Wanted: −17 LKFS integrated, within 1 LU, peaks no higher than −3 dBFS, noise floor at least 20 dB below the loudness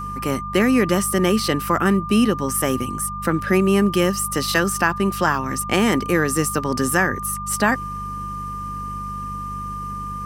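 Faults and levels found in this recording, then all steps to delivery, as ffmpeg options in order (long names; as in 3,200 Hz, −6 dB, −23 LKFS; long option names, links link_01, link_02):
mains hum 50 Hz; hum harmonics up to 200 Hz; level of the hum −30 dBFS; interfering tone 1,200 Hz; level of the tone −28 dBFS; integrated loudness −20.5 LKFS; sample peak −2.5 dBFS; target loudness −17.0 LKFS
→ -af "bandreject=frequency=50:width_type=h:width=4,bandreject=frequency=100:width_type=h:width=4,bandreject=frequency=150:width_type=h:width=4,bandreject=frequency=200:width_type=h:width=4"
-af "bandreject=frequency=1200:width=30"
-af "volume=3.5dB,alimiter=limit=-3dB:level=0:latency=1"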